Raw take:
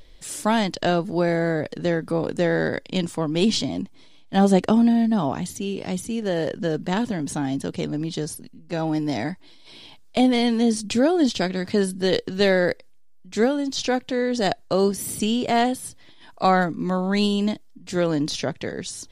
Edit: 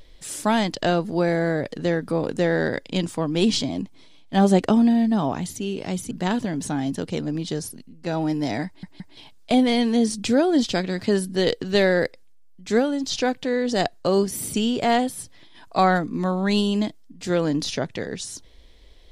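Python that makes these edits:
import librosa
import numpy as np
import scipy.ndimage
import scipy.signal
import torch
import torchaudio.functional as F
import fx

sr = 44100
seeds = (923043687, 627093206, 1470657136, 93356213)

y = fx.edit(x, sr, fx.cut(start_s=6.11, length_s=0.66),
    fx.stutter_over(start_s=9.32, slice_s=0.17, count=3), tone=tone)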